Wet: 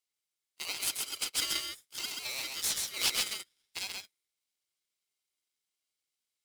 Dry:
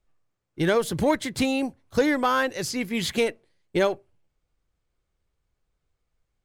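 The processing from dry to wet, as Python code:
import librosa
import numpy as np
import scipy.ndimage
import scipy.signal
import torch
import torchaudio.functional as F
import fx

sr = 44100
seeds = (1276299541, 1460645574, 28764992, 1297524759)

p1 = scipy.signal.sosfilt(scipy.signal.cheby1(6, 6, 2900.0, 'highpass', fs=sr, output='sos'), x)
p2 = p1 + fx.echo_single(p1, sr, ms=132, db=-3.5, dry=0)
p3 = p2 * np.sign(np.sin(2.0 * np.pi * 870.0 * np.arange(len(p2)) / sr))
y = F.gain(torch.from_numpy(p3), 4.5).numpy()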